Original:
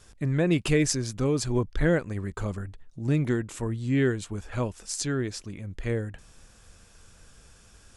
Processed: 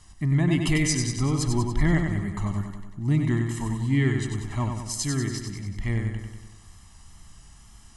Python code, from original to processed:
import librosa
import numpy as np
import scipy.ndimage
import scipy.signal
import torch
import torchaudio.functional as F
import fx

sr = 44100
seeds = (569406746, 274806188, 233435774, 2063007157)

y = x + 0.98 * np.pad(x, (int(1.0 * sr / 1000.0), 0))[:len(x)]
y = fx.wow_flutter(y, sr, seeds[0], rate_hz=2.1, depth_cents=37.0)
y = fx.echo_feedback(y, sr, ms=95, feedback_pct=58, wet_db=-5.5)
y = y * librosa.db_to_amplitude(-2.0)